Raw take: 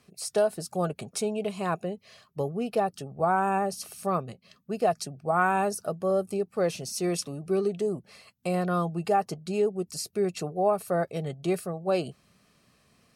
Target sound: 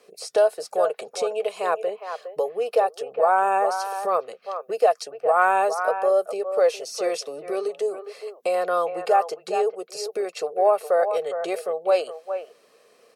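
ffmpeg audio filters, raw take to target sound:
ffmpeg -i in.wav -filter_complex "[0:a]acrossover=split=6400[link_01][link_02];[link_02]acompressor=threshold=-48dB:ratio=4:attack=1:release=60[link_03];[link_01][link_03]amix=inputs=2:normalize=0,highpass=frequency=470:width_type=q:width=5.7,acrossover=split=600|2600[link_04][link_05][link_06];[link_04]acompressor=threshold=-38dB:ratio=12[link_07];[link_05]aecho=1:1:411:0.422[link_08];[link_07][link_08][link_06]amix=inputs=3:normalize=0,volume=4dB" out.wav

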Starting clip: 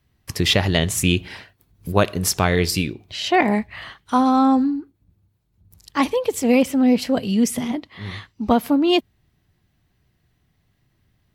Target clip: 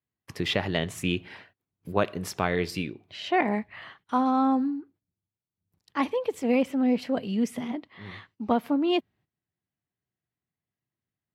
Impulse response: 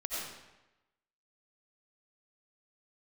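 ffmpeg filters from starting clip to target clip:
-af "agate=range=-15dB:threshold=-49dB:ratio=16:detection=peak,highpass=120,bass=frequency=250:gain=-2,treble=frequency=4000:gain=-12,volume=-6.5dB"

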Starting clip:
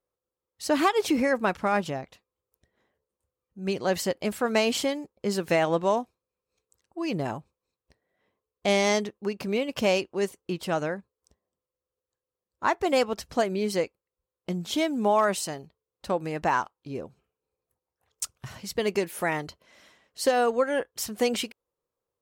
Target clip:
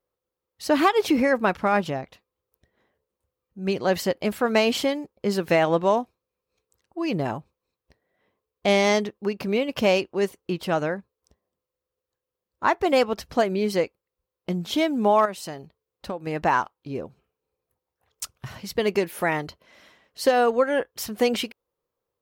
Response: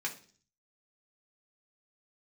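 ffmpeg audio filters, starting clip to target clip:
-filter_complex "[0:a]equalizer=frequency=7900:width_type=o:width=0.96:gain=-7,asettb=1/sr,asplit=3[link_01][link_02][link_03];[link_01]atrim=end=15.254[link_04];[link_02]atrim=start=15.25:end=16.27,asetpts=PTS-STARTPTS,afade=type=in:duration=0.004:curve=qsin,afade=type=out:start_time=1.016:duration=0.004:curve=qsin,acompressor=threshold=-33dB:ratio=4[link_05];[link_03]atrim=start=16.266[link_06];[link_04][link_05]acrossfade=duration=0.004:curve1=hsin:curve2=qsin[link_07];[link_07][link_06]acrossfade=duration=0.004:curve1=qsin:curve2=hsin,volume=3.5dB"

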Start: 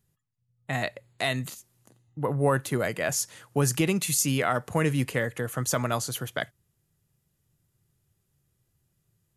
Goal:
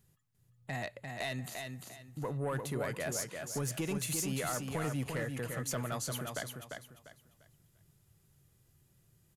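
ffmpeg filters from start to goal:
ffmpeg -i in.wav -filter_complex "[0:a]acompressor=threshold=-58dB:ratio=1.5,asoftclip=type=tanh:threshold=-31dB,asplit=2[link_01][link_02];[link_02]aecho=0:1:347|694|1041|1388:0.562|0.157|0.0441|0.0123[link_03];[link_01][link_03]amix=inputs=2:normalize=0,volume=3.5dB" out.wav

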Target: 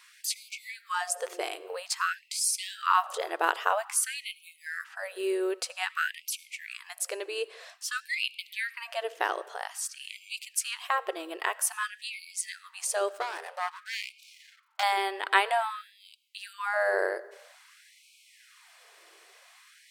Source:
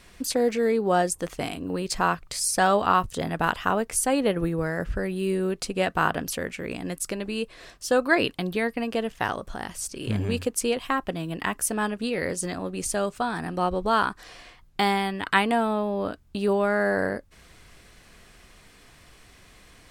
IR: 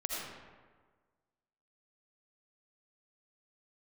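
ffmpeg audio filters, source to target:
-filter_complex "[0:a]asettb=1/sr,asplit=3[link_01][link_02][link_03];[link_01]atrim=end=13.084[link_04];[link_02]atrim=start=13.08:end=14.83,asetpts=PTS-STARTPTS,afade=type=in:duration=0.004:curve=qsin,afade=type=out:start_time=1.746:duration=0.004:curve=qsin,aeval=exprs='max(val(0),0)':channel_layout=same[link_05];[link_03]atrim=start=14.826[link_06];[link_04][link_05]acrossfade=duration=0.004:curve1=hsin:curve2=qsin[link_07];[link_07][link_06]acrossfade=duration=0.004:curve1=qsin:curve2=hsin,asplit=2[link_08][link_09];[1:a]atrim=start_sample=2205[link_10];[link_09][link_10]afir=irnorm=-1:irlink=0,volume=-20.5dB[link_11];[link_08][link_11]amix=inputs=2:normalize=0,afftfilt=real='re*gte(b*sr/1024,310*pow(2200/310,0.5+0.5*sin(2*PI*0.51*pts/sr)))':imag='im*gte(b*sr/1024,310*pow(2200/310,0.5+0.5*sin(2*PI*0.51*pts/sr)))':win_size=1024:overlap=0.75,volume=-2dB"

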